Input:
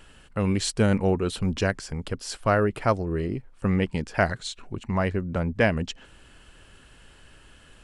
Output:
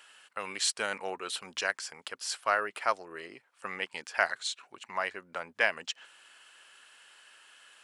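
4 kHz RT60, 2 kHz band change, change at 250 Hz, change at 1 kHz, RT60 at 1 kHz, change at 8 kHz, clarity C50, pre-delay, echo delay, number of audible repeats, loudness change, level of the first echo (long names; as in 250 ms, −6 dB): no reverb audible, −0.5 dB, −24.5 dB, −3.5 dB, no reverb audible, 0.0 dB, no reverb audible, no reverb audible, no echo audible, no echo audible, −7.0 dB, no echo audible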